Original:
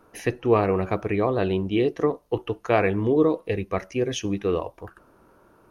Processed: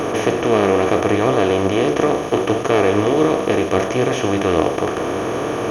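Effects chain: spectral levelling over time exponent 0.2; flange 0.73 Hz, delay 6.5 ms, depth 8.8 ms, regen +62%; trim +2.5 dB

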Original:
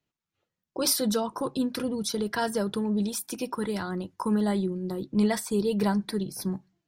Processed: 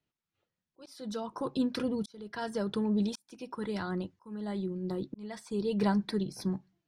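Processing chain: treble shelf 2.9 kHz +11 dB; slow attack 749 ms; tape spacing loss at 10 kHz 21 dB; trim -1.5 dB

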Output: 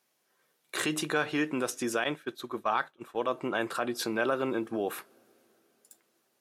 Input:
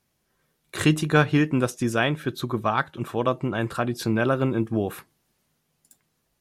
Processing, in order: peak limiter -16 dBFS, peak gain reduction 9.5 dB; high-pass 370 Hz 12 dB/octave; two-slope reverb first 0.21 s, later 4.2 s, from -22 dB, DRR 20 dB; 2.04–3.31 s: expander -28 dBFS

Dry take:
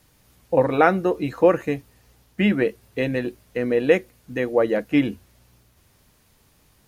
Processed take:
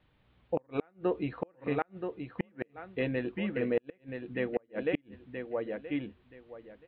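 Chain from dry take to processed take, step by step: steep low-pass 3.7 kHz 48 dB/octave; on a send: feedback delay 976 ms, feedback 20%, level -7 dB; on the sum: inverted gate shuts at -9 dBFS, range -38 dB; trim -8 dB

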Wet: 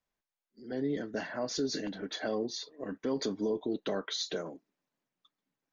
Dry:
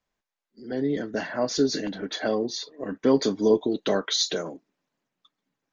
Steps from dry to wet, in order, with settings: 3.25–4.53 s: treble shelf 4.3 kHz -8.5 dB; peak limiter -16.5 dBFS, peak gain reduction 8 dB; trim -6.5 dB

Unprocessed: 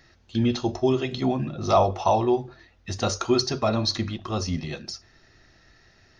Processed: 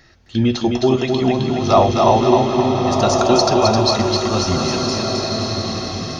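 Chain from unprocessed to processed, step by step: thinning echo 262 ms, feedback 51%, high-pass 170 Hz, level -3.5 dB; swelling reverb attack 1530 ms, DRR 2.5 dB; trim +6 dB

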